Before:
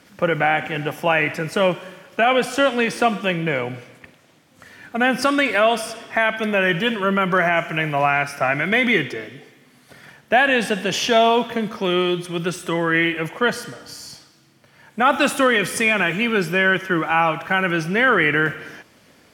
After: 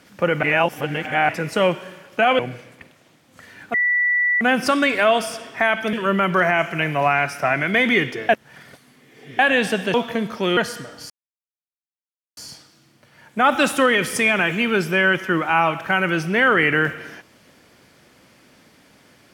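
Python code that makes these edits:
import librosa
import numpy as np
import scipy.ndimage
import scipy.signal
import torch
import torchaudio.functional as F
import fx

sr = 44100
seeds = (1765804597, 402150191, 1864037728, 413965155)

y = fx.edit(x, sr, fx.reverse_span(start_s=0.43, length_s=0.86),
    fx.cut(start_s=2.39, length_s=1.23),
    fx.insert_tone(at_s=4.97, length_s=0.67, hz=1960.0, db=-15.5),
    fx.cut(start_s=6.49, length_s=0.42),
    fx.reverse_span(start_s=9.27, length_s=1.1),
    fx.cut(start_s=10.92, length_s=0.43),
    fx.cut(start_s=11.98, length_s=1.47),
    fx.insert_silence(at_s=13.98, length_s=1.27), tone=tone)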